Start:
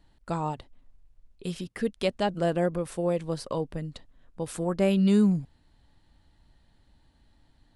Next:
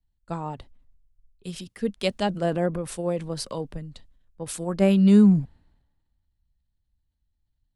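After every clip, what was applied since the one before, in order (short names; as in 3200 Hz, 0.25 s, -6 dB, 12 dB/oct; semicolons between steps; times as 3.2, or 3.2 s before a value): transient shaper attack +2 dB, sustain +6 dB; bell 200 Hz +3.5 dB 0.29 oct; three-band expander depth 70%; gain -1.5 dB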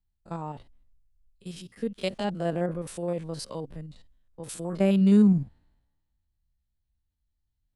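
stepped spectrum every 50 ms; gain -3 dB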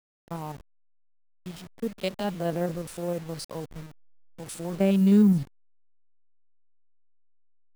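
level-crossing sampler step -40.5 dBFS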